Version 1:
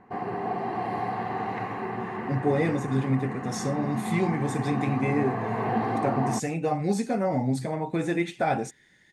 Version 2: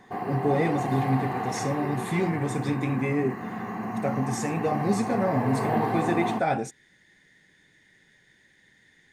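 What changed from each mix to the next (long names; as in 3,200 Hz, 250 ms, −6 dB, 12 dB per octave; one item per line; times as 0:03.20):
speech: entry −2.00 s
background: remove high-frequency loss of the air 67 metres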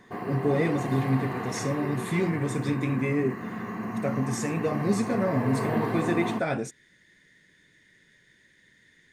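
master: add parametric band 790 Hz −13 dB 0.23 octaves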